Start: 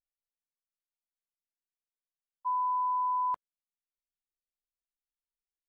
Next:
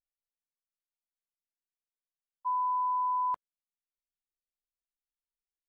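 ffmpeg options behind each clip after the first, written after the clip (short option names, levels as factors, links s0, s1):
-af anull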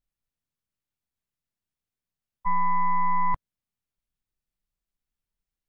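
-af "tremolo=f=180:d=0.261,aeval=exprs='0.0501*(cos(1*acos(clip(val(0)/0.0501,-1,1)))-cos(1*PI/2))+0.01*(cos(2*acos(clip(val(0)/0.0501,-1,1)))-cos(2*PI/2))':c=same,bass=f=250:g=15,treble=f=4000:g=-3,volume=1.78"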